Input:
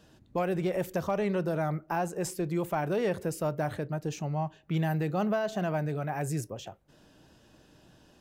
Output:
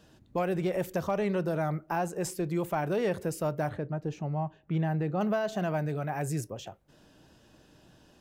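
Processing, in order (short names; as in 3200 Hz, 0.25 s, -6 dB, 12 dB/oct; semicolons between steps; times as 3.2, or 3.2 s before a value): 3.69–5.21 LPF 1500 Hz 6 dB/oct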